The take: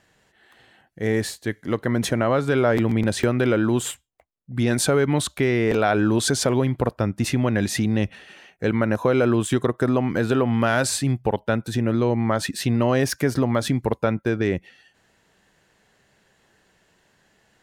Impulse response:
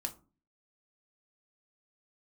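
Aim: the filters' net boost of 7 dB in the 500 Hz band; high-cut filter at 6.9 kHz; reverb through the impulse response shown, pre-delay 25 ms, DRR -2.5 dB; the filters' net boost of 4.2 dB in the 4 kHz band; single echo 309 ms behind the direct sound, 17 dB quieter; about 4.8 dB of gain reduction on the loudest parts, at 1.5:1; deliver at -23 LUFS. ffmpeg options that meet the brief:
-filter_complex "[0:a]lowpass=6900,equalizer=f=500:t=o:g=8.5,equalizer=f=4000:t=o:g=5.5,acompressor=threshold=0.0708:ratio=1.5,aecho=1:1:309:0.141,asplit=2[s0][s1];[1:a]atrim=start_sample=2205,adelay=25[s2];[s1][s2]afir=irnorm=-1:irlink=0,volume=1.33[s3];[s0][s3]amix=inputs=2:normalize=0,volume=0.531"

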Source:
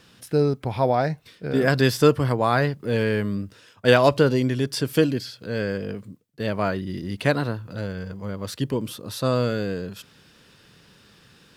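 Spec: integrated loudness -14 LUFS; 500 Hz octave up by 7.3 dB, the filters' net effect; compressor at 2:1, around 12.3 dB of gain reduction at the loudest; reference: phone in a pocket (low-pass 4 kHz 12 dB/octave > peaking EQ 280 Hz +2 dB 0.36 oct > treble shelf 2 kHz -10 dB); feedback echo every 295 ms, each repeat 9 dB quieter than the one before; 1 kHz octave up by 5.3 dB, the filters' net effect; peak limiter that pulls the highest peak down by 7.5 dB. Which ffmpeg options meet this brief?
-af "equalizer=f=500:t=o:g=7.5,equalizer=f=1000:t=o:g=6.5,acompressor=threshold=0.0398:ratio=2,alimiter=limit=0.141:level=0:latency=1,lowpass=4000,equalizer=f=280:t=o:w=0.36:g=2,highshelf=f=2000:g=-10,aecho=1:1:295|590|885|1180:0.355|0.124|0.0435|0.0152,volume=5.62"

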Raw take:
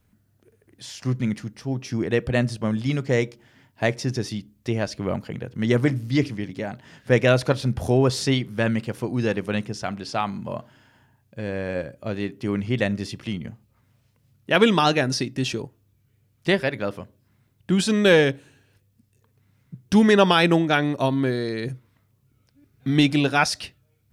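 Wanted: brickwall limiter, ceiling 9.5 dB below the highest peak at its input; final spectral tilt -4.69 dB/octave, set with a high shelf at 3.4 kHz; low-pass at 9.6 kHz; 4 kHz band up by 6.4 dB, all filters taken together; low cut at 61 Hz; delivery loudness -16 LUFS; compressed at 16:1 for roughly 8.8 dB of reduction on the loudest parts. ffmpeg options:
-af "highpass=61,lowpass=9600,highshelf=f=3400:g=7,equalizer=f=4000:t=o:g=3.5,acompressor=threshold=0.112:ratio=16,volume=4.22,alimiter=limit=0.631:level=0:latency=1"

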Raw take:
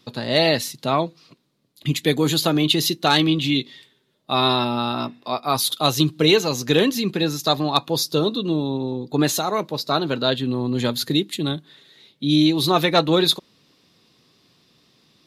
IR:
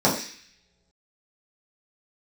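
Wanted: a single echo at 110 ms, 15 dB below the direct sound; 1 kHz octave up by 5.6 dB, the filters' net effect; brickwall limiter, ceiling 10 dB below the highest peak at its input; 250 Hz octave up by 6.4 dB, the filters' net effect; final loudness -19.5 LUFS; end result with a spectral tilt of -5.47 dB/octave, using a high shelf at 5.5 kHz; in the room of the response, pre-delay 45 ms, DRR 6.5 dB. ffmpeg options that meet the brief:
-filter_complex "[0:a]equalizer=f=250:t=o:g=8,equalizer=f=1000:t=o:g=7,highshelf=f=5500:g=-4,alimiter=limit=0.335:level=0:latency=1,aecho=1:1:110:0.178,asplit=2[s0][s1];[1:a]atrim=start_sample=2205,adelay=45[s2];[s1][s2]afir=irnorm=-1:irlink=0,volume=0.0596[s3];[s0][s3]amix=inputs=2:normalize=0,volume=0.794"

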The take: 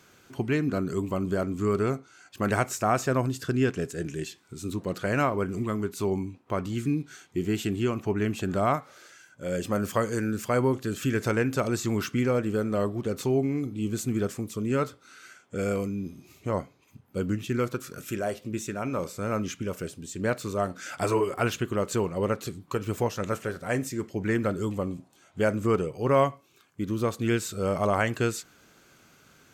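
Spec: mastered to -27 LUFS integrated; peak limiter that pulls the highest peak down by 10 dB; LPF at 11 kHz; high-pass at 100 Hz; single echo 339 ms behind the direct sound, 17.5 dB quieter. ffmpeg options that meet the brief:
-af "highpass=100,lowpass=11000,alimiter=limit=0.112:level=0:latency=1,aecho=1:1:339:0.133,volume=1.68"

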